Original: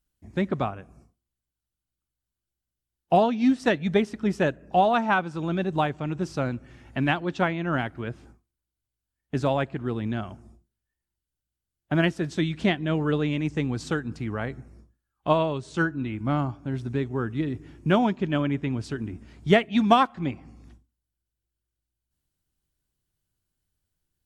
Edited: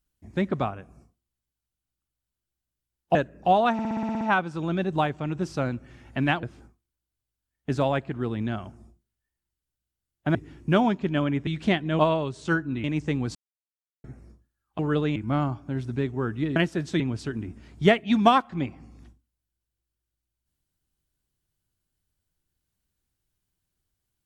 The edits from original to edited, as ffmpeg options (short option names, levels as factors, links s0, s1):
-filter_complex "[0:a]asplit=21[s0][s1][s2][s3][s4][s5][s6][s7][s8][s9][s10][s11][s12][s13][s14][s15][s16][s17][s18][s19][s20];[s0]atrim=end=3.152[s21];[s1]atrim=start=4.428:end=5.072[s22];[s2]atrim=start=5.008:end=5.072[s23];[s3]atrim=start=5.008:end=5.072[s24];[s4]atrim=start=5.008:end=5.072[s25];[s5]atrim=start=5.008:end=5.072[s26];[s6]atrim=start=5.008:end=5.072[s27];[s7]atrim=start=5.008:end=5.072[s28];[s8]atrim=start=5.008:end=5.072[s29];[s9]atrim=start=5.008:end=7.232[s30];[s10]atrim=start=8.078:end=12.002[s31];[s11]atrim=start=17.528:end=18.652[s32];[s12]atrim=start=12.438:end=12.962[s33];[s13]atrim=start=15.278:end=16.132[s34];[s14]atrim=start=13.328:end=13.84,asetpts=PTS-STARTPTS,afade=t=out:st=0.508:d=0.004:c=hsin[s35];[s15]atrim=start=13.84:end=14.53,asetpts=PTS-STARTPTS,volume=0[s36];[s16]atrim=start=14.53:end=15.282,asetpts=PTS-STARTPTS,afade=t=in:d=0.004:c=hsin[s37];[s17]atrim=start=12.958:end=13.332[s38];[s18]atrim=start=16.128:end=17.532[s39];[s19]atrim=start=11.998:end=12.442[s40];[s20]atrim=start=18.648[s41];[s21][s22]acrossfade=d=0.004:c1=hsin:c2=hsin[s42];[s42][s23]acrossfade=d=0.004:c1=hsin:c2=hsin[s43];[s43][s24]acrossfade=d=0.004:c1=hsin:c2=hsin[s44];[s44][s25]acrossfade=d=0.004:c1=hsin:c2=hsin[s45];[s45][s26]acrossfade=d=0.004:c1=hsin:c2=hsin[s46];[s46][s27]acrossfade=d=0.004:c1=hsin:c2=hsin[s47];[s47][s28]acrossfade=d=0.004:c1=hsin:c2=hsin[s48];[s48][s29]acrossfade=d=0.004:c1=hsin:c2=hsin[s49];[s49][s30]acrossfade=d=0.004:c1=hsin:c2=hsin[s50];[s50][s31]acrossfade=d=0.004:c1=hsin:c2=hsin[s51];[s51][s32]acrossfade=d=0.004:c1=hsin:c2=hsin[s52];[s52][s33]acrossfade=d=0.004:c1=hsin:c2=hsin[s53];[s53][s34]acrossfade=d=0.004:c1=hsin:c2=hsin[s54];[s35][s36][s37]concat=n=3:v=0:a=1[s55];[s54][s55]acrossfade=d=0.004:c1=hsin:c2=hsin[s56];[s56][s38]acrossfade=d=0.004:c1=hsin:c2=hsin[s57];[s57][s39]acrossfade=d=0.004:c1=hsin:c2=hsin[s58];[s58][s40]acrossfade=d=0.004:c1=hsin:c2=hsin[s59];[s59][s41]acrossfade=d=0.004:c1=hsin:c2=hsin"